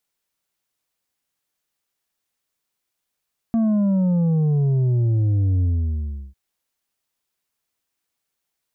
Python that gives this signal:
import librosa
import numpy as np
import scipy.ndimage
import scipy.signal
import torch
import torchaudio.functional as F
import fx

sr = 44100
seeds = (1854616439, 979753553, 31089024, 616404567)

y = fx.sub_drop(sr, level_db=-16.5, start_hz=230.0, length_s=2.8, drive_db=5.5, fade_s=0.72, end_hz=65.0)